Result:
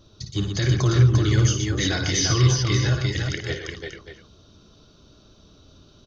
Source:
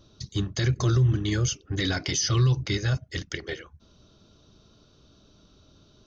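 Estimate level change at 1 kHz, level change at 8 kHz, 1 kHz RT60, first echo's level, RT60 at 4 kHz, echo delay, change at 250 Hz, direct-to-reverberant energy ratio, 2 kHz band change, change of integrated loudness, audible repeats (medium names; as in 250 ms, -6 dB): +5.0 dB, no reading, no reverb, -7.0 dB, no reverb, 56 ms, +4.5 dB, no reverb, +5.0 dB, +4.5 dB, 4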